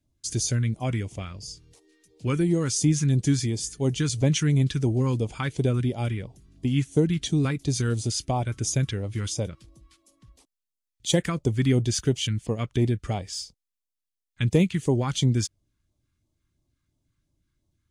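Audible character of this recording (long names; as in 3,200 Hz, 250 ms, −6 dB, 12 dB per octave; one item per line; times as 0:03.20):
phaser sweep stages 2, 2.9 Hz, lowest notch 630–1,500 Hz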